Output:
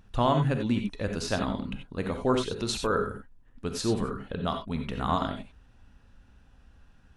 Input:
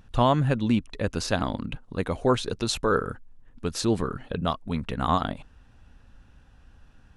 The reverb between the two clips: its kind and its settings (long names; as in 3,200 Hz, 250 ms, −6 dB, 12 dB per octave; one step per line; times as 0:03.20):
reverb whose tail is shaped and stops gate 110 ms rising, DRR 4.5 dB
level −4 dB